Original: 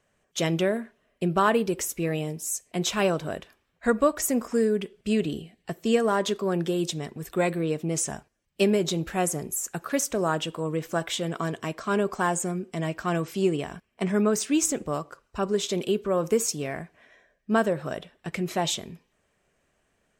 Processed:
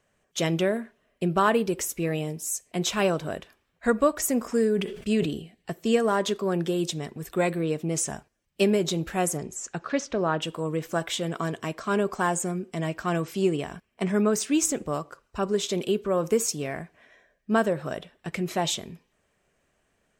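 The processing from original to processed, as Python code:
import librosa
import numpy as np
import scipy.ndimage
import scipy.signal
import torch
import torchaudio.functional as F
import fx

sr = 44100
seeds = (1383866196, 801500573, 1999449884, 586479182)

y = fx.sustainer(x, sr, db_per_s=80.0, at=(4.41, 5.3))
y = fx.lowpass(y, sr, hz=fx.line((9.37, 8400.0), (10.41, 3900.0)), slope=24, at=(9.37, 10.41), fade=0.02)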